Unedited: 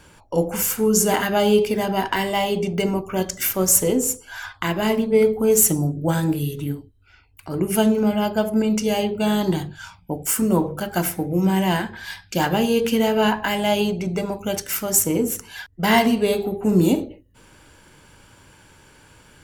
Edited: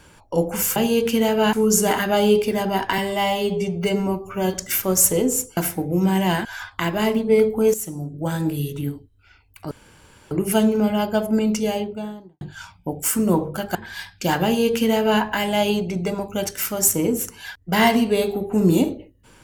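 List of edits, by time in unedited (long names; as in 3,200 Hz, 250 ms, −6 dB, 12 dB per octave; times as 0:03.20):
0:02.21–0:03.25: time-stretch 1.5×
0:05.57–0:06.51: fade in, from −17 dB
0:07.54: splice in room tone 0.60 s
0:08.69–0:09.64: fade out and dull
0:10.98–0:11.86: move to 0:04.28
0:12.55–0:13.32: duplicate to 0:00.76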